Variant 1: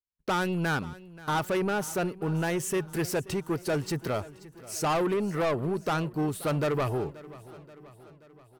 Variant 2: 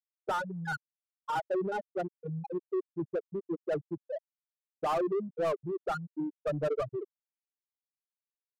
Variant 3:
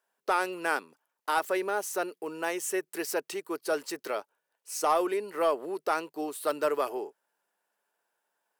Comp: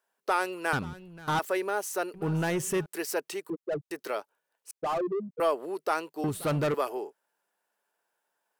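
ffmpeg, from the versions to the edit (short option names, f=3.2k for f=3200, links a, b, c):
-filter_complex "[0:a]asplit=3[a][b][c];[1:a]asplit=2[d][e];[2:a]asplit=6[f][g][h][i][j][k];[f]atrim=end=0.732[l];[a]atrim=start=0.728:end=1.392[m];[g]atrim=start=1.388:end=2.142[n];[b]atrim=start=2.138:end=2.862[o];[h]atrim=start=2.858:end=3.502[p];[d]atrim=start=3.498:end=3.912[q];[i]atrim=start=3.908:end=4.712[r];[e]atrim=start=4.708:end=5.402[s];[j]atrim=start=5.398:end=6.242[t];[c]atrim=start=6.238:end=6.742[u];[k]atrim=start=6.738[v];[l][m]acrossfade=d=0.004:c1=hsin:c2=hsin[w];[w][n]acrossfade=d=0.004:c1=hsin:c2=hsin[x];[x][o]acrossfade=d=0.004:c1=hsin:c2=hsin[y];[y][p]acrossfade=d=0.004:c1=hsin:c2=hsin[z];[z][q]acrossfade=d=0.004:c1=hsin:c2=hsin[aa];[aa][r]acrossfade=d=0.004:c1=hsin:c2=hsin[ab];[ab][s]acrossfade=d=0.004:c1=hsin:c2=hsin[ac];[ac][t]acrossfade=d=0.004:c1=hsin:c2=hsin[ad];[ad][u]acrossfade=d=0.004:c1=hsin:c2=hsin[ae];[ae][v]acrossfade=d=0.004:c1=hsin:c2=hsin"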